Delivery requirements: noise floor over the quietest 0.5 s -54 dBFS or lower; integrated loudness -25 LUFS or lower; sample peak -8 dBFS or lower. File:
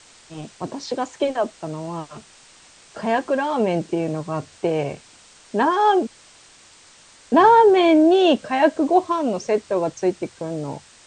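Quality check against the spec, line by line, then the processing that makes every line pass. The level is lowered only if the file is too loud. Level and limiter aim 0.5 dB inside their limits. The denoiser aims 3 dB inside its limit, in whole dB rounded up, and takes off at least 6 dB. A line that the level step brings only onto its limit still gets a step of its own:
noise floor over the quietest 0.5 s -50 dBFS: fail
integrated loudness -20.0 LUFS: fail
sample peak -4.0 dBFS: fail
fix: trim -5.5 dB

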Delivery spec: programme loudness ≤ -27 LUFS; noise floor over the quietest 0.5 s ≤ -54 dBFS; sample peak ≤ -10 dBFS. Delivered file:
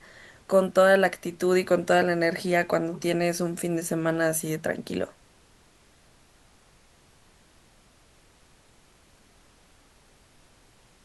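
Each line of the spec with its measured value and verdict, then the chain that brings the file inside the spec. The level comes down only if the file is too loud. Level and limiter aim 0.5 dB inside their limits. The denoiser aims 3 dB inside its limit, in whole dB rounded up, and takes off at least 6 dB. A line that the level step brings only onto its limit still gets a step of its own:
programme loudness -24.5 LUFS: fail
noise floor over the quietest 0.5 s -58 dBFS: pass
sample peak -9.0 dBFS: fail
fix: trim -3 dB

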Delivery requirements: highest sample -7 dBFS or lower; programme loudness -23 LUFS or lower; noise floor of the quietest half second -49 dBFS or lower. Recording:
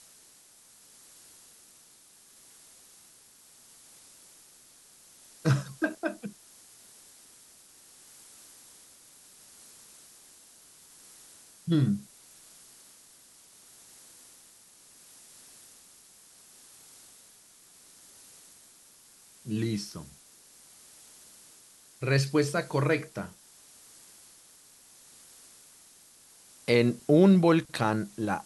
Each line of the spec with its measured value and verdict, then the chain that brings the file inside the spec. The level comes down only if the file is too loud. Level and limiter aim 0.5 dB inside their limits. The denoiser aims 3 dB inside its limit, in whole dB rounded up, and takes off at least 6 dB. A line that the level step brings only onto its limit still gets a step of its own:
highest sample -9.5 dBFS: pass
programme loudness -27.0 LUFS: pass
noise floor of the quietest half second -57 dBFS: pass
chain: none needed

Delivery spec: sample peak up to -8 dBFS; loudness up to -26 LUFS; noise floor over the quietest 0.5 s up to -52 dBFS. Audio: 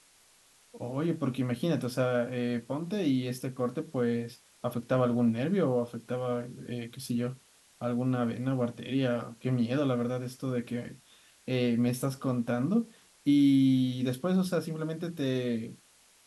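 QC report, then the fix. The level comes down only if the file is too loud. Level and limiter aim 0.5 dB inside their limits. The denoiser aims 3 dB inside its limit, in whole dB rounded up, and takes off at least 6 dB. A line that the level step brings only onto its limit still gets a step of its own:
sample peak -15.5 dBFS: pass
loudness -30.5 LUFS: pass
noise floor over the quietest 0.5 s -62 dBFS: pass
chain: none needed

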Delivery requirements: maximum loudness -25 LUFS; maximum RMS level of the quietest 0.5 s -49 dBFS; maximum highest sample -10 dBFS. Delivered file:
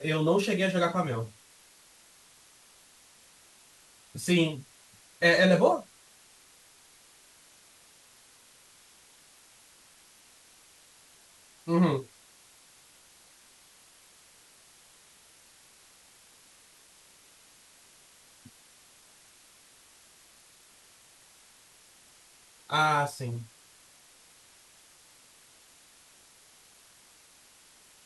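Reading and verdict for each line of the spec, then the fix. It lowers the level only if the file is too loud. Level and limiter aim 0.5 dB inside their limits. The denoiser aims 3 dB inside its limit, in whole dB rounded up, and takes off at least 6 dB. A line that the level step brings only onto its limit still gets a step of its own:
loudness -26.5 LUFS: pass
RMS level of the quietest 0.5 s -58 dBFS: pass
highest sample -9.5 dBFS: fail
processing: peak limiter -10.5 dBFS

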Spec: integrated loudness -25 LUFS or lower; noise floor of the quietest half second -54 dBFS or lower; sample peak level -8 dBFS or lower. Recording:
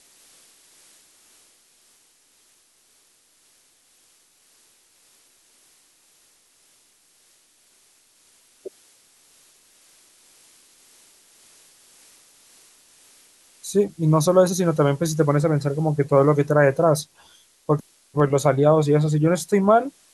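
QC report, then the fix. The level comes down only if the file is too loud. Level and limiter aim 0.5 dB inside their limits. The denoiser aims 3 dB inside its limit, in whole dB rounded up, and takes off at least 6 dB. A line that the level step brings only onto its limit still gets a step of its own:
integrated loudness -19.5 LUFS: fail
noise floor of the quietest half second -60 dBFS: pass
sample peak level -4.5 dBFS: fail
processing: trim -6 dB

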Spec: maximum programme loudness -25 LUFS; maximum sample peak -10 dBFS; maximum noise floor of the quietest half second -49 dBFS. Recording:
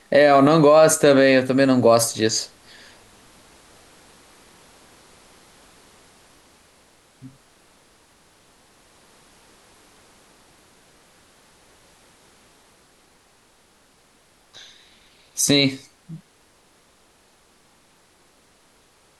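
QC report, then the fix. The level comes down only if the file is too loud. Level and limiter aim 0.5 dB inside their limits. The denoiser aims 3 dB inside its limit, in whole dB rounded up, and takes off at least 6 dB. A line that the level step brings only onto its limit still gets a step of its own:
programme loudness -16.0 LUFS: fail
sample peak -5.0 dBFS: fail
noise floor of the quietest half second -57 dBFS: pass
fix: trim -9.5 dB

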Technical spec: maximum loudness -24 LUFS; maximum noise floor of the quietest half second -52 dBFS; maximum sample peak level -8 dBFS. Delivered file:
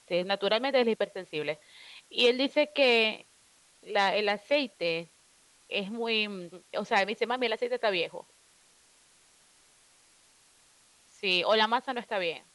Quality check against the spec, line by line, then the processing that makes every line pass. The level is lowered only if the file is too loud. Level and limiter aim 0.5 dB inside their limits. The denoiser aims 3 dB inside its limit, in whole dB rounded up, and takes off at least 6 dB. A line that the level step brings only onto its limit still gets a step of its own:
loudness -28.0 LUFS: pass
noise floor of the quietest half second -62 dBFS: pass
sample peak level -11.5 dBFS: pass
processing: none needed

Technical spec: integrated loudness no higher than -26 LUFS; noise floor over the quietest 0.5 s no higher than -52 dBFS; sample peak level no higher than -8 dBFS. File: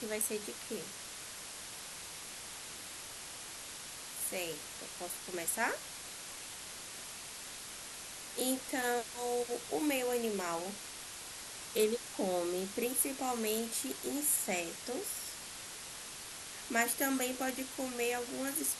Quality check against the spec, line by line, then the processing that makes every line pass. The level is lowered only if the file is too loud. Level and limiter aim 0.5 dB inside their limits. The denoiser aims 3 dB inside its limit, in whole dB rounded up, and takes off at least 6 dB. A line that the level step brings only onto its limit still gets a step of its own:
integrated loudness -37.0 LUFS: pass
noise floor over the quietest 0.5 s -47 dBFS: fail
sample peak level -16.5 dBFS: pass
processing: noise reduction 8 dB, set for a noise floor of -47 dBFS

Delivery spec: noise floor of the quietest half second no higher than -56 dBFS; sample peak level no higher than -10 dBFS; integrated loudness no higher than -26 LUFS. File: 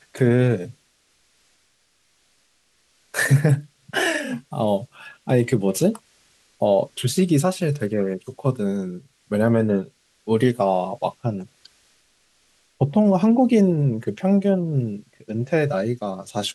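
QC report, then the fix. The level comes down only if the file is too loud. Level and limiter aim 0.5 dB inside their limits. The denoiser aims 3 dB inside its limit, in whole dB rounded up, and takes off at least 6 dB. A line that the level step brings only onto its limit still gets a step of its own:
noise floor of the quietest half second -64 dBFS: pass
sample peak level -5.5 dBFS: fail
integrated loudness -21.5 LUFS: fail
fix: trim -5 dB

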